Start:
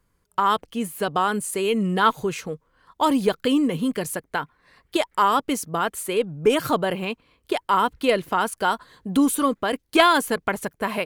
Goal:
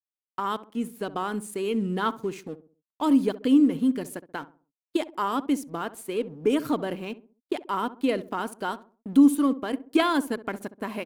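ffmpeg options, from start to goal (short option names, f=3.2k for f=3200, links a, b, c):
-filter_complex "[0:a]aeval=exprs='sgn(val(0))*max(abs(val(0))-0.0075,0)':c=same,equalizer=f=280:t=o:w=0.8:g=12,agate=range=-33dB:threshold=-40dB:ratio=3:detection=peak,asplit=2[a][b];[b]adelay=66,lowpass=f=970:p=1,volume=-14dB,asplit=2[c][d];[d]adelay=66,lowpass=f=970:p=1,volume=0.41,asplit=2[e][f];[f]adelay=66,lowpass=f=970:p=1,volume=0.41,asplit=2[g][h];[h]adelay=66,lowpass=f=970:p=1,volume=0.41[i];[c][e][g][i]amix=inputs=4:normalize=0[j];[a][j]amix=inputs=2:normalize=0,volume=-9dB"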